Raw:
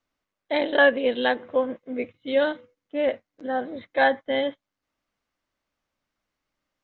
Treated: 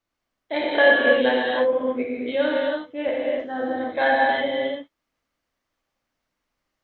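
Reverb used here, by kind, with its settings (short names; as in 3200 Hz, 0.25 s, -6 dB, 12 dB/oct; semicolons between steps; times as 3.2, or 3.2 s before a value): non-linear reverb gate 0.35 s flat, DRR -4.5 dB; gain -3 dB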